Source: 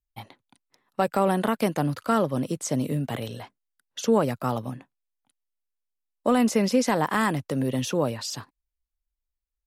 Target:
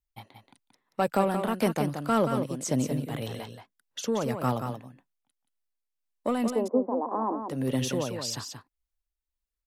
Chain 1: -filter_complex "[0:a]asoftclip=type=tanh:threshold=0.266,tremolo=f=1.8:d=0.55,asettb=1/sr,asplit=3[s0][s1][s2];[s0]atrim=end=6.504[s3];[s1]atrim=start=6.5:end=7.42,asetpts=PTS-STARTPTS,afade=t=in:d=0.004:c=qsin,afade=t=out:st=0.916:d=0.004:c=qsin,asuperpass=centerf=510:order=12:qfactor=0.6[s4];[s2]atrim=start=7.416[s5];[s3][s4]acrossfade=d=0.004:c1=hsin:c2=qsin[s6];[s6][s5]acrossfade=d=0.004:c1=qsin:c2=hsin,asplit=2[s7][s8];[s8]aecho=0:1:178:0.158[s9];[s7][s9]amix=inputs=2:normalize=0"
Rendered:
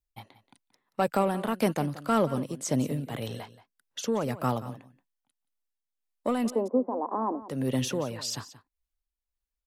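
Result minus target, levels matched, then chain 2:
echo-to-direct -9 dB
-filter_complex "[0:a]asoftclip=type=tanh:threshold=0.266,tremolo=f=1.8:d=0.55,asettb=1/sr,asplit=3[s0][s1][s2];[s0]atrim=end=6.504[s3];[s1]atrim=start=6.5:end=7.42,asetpts=PTS-STARTPTS,afade=t=in:d=0.004:c=qsin,afade=t=out:st=0.916:d=0.004:c=qsin,asuperpass=centerf=510:order=12:qfactor=0.6[s4];[s2]atrim=start=7.416[s5];[s3][s4]acrossfade=d=0.004:c1=hsin:c2=qsin[s6];[s6][s5]acrossfade=d=0.004:c1=qsin:c2=hsin,asplit=2[s7][s8];[s8]aecho=0:1:178:0.447[s9];[s7][s9]amix=inputs=2:normalize=0"

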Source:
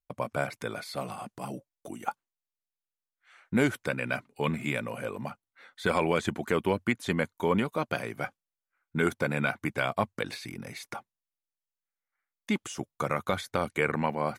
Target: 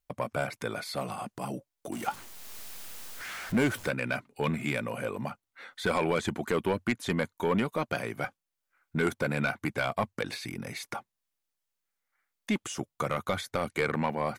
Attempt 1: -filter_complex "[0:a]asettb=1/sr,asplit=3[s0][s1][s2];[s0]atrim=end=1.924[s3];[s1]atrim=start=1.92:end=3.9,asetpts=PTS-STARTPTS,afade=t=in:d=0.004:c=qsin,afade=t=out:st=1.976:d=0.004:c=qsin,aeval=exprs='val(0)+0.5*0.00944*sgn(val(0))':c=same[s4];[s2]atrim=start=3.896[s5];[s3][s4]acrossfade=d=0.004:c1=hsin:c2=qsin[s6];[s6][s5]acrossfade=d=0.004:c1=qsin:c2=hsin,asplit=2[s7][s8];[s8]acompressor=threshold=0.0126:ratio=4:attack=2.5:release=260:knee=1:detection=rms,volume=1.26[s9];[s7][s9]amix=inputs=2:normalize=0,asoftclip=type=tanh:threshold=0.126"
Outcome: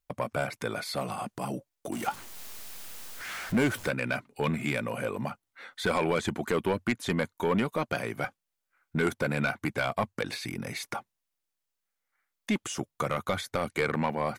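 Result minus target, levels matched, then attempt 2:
compression: peak gain reduction -7 dB
-filter_complex "[0:a]asettb=1/sr,asplit=3[s0][s1][s2];[s0]atrim=end=1.924[s3];[s1]atrim=start=1.92:end=3.9,asetpts=PTS-STARTPTS,afade=t=in:d=0.004:c=qsin,afade=t=out:st=1.976:d=0.004:c=qsin,aeval=exprs='val(0)+0.5*0.00944*sgn(val(0))':c=same[s4];[s2]atrim=start=3.896[s5];[s3][s4]acrossfade=d=0.004:c1=hsin:c2=qsin[s6];[s6][s5]acrossfade=d=0.004:c1=qsin:c2=hsin,asplit=2[s7][s8];[s8]acompressor=threshold=0.00447:ratio=4:attack=2.5:release=260:knee=1:detection=rms,volume=1.26[s9];[s7][s9]amix=inputs=2:normalize=0,asoftclip=type=tanh:threshold=0.126"

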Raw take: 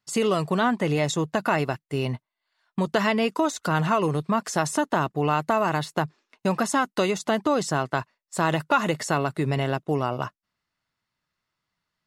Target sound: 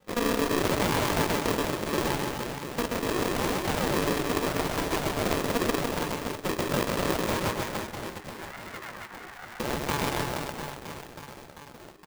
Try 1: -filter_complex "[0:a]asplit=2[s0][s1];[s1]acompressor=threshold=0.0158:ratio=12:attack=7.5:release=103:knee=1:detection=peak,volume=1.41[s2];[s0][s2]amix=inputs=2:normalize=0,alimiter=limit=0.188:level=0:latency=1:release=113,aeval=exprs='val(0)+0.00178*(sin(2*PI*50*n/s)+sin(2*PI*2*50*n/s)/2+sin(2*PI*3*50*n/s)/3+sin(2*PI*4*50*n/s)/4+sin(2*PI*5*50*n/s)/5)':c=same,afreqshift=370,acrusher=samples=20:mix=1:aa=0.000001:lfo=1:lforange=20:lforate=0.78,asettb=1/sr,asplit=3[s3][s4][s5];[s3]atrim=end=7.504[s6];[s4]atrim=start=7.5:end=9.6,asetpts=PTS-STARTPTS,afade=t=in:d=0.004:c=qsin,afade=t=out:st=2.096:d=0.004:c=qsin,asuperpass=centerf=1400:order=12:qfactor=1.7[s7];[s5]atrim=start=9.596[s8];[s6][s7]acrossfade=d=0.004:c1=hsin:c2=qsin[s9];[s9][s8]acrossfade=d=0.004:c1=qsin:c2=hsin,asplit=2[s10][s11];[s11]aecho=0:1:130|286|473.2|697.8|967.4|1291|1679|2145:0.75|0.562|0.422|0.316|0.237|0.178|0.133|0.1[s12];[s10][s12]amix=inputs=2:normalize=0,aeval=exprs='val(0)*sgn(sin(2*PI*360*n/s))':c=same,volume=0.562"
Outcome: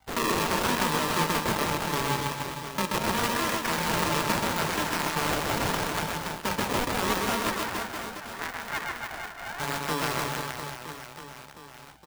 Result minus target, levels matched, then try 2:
decimation with a swept rate: distortion -33 dB
-filter_complex "[0:a]asplit=2[s0][s1];[s1]acompressor=threshold=0.0158:ratio=12:attack=7.5:release=103:knee=1:detection=peak,volume=1.41[s2];[s0][s2]amix=inputs=2:normalize=0,alimiter=limit=0.188:level=0:latency=1:release=113,aeval=exprs='val(0)+0.00178*(sin(2*PI*50*n/s)+sin(2*PI*2*50*n/s)/2+sin(2*PI*3*50*n/s)/3+sin(2*PI*4*50*n/s)/4+sin(2*PI*5*50*n/s)/5)':c=same,afreqshift=370,acrusher=samples=68:mix=1:aa=0.000001:lfo=1:lforange=68:lforate=0.78,asettb=1/sr,asplit=3[s3][s4][s5];[s3]atrim=end=7.504[s6];[s4]atrim=start=7.5:end=9.6,asetpts=PTS-STARTPTS,afade=t=in:d=0.004:c=qsin,afade=t=out:st=2.096:d=0.004:c=qsin,asuperpass=centerf=1400:order=12:qfactor=1.7[s7];[s5]atrim=start=9.596[s8];[s6][s7]acrossfade=d=0.004:c1=hsin:c2=qsin[s9];[s9][s8]acrossfade=d=0.004:c1=qsin:c2=hsin,asplit=2[s10][s11];[s11]aecho=0:1:130|286|473.2|697.8|967.4|1291|1679|2145:0.75|0.562|0.422|0.316|0.237|0.178|0.133|0.1[s12];[s10][s12]amix=inputs=2:normalize=0,aeval=exprs='val(0)*sgn(sin(2*PI*360*n/s))':c=same,volume=0.562"

